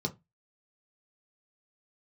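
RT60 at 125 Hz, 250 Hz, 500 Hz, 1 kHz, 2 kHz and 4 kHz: 0.30, 0.25, 0.20, 0.20, 0.20, 0.15 s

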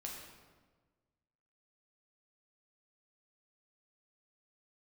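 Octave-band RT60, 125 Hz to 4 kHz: 1.8, 1.6, 1.5, 1.3, 1.1, 0.95 s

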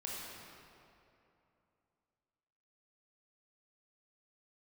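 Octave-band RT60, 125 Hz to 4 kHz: 3.1, 3.0, 2.9, 2.8, 2.3, 1.8 s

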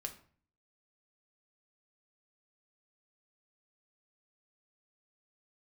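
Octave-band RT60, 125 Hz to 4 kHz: 0.70, 0.65, 0.45, 0.45, 0.40, 0.35 s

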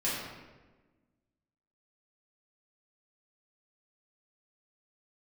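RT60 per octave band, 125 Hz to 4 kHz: 1.6, 1.8, 1.4, 1.1, 1.1, 0.85 s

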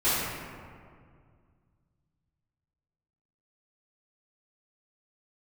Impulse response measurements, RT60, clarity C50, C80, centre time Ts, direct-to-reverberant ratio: 2.1 s, -3.0 dB, 0.0 dB, 0.127 s, -14.5 dB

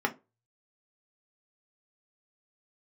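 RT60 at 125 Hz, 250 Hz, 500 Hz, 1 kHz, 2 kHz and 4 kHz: 0.60, 0.25, 0.30, 0.25, 0.20, 0.15 s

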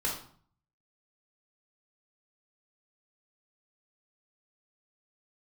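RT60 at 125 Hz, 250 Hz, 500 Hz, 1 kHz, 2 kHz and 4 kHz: 0.80, 0.60, 0.50, 0.55, 0.45, 0.40 s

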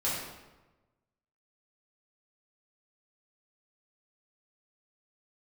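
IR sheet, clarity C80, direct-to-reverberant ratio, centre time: 3.0 dB, -9.0 dB, 71 ms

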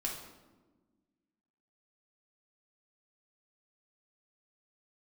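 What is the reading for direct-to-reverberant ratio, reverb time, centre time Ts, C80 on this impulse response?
-2.5 dB, 1.3 s, 41 ms, 7.0 dB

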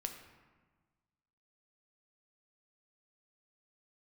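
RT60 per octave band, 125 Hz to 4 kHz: 1.8, 1.6, 1.4, 1.4, 1.2, 0.85 s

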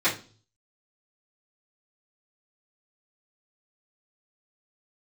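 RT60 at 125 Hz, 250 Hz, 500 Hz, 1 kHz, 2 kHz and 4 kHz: 0.80, 0.50, 0.40, 0.35, 0.30, 0.40 s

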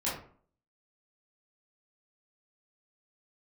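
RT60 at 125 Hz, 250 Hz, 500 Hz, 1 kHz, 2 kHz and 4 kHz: 0.50, 0.55, 0.50, 0.50, 0.40, 0.25 s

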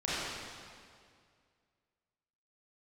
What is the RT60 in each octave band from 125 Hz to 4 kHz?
2.4, 2.2, 2.2, 2.1, 1.9, 1.8 s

